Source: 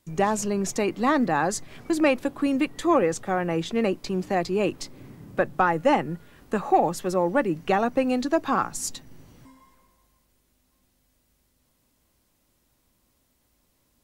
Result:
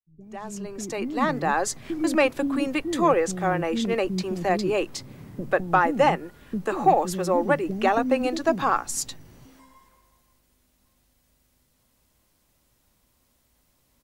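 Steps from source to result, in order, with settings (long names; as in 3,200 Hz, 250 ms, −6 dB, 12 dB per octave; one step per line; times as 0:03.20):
fade in at the beginning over 1.60 s
multiband delay without the direct sound lows, highs 140 ms, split 300 Hz
level +2 dB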